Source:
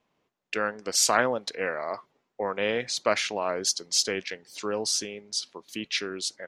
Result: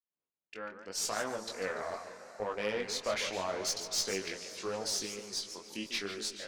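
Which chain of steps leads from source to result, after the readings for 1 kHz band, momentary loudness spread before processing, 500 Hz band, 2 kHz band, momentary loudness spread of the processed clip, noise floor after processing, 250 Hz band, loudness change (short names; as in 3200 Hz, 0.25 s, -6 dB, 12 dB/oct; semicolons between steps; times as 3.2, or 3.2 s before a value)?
-9.5 dB, 12 LU, -7.5 dB, -9.0 dB, 10 LU, under -85 dBFS, -7.5 dB, -8.0 dB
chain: opening faded in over 1.87 s; diffused feedback echo 0.472 s, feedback 47%, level -16 dB; tube stage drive 21 dB, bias 0.3; chorus 0.79 Hz, delay 18.5 ms, depth 4.2 ms; warbling echo 0.147 s, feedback 32%, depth 210 cents, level -10 dB; gain -2 dB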